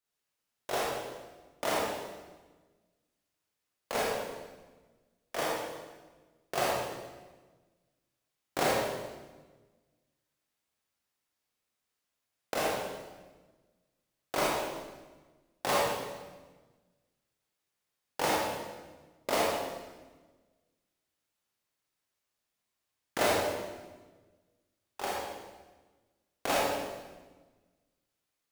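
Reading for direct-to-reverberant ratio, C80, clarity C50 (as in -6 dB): -6.5 dB, 0.5 dB, -2.5 dB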